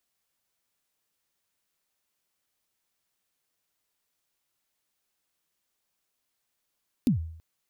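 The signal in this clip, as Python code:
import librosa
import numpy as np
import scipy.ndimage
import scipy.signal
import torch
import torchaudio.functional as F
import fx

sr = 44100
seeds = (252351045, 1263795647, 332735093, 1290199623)

y = fx.drum_kick(sr, seeds[0], length_s=0.33, level_db=-16.5, start_hz=280.0, end_hz=81.0, sweep_ms=115.0, decay_s=0.64, click=True)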